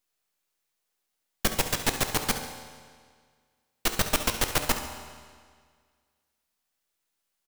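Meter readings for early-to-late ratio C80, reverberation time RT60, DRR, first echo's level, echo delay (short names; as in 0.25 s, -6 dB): 9.0 dB, 1.8 s, 5.0 dB, -12.5 dB, 69 ms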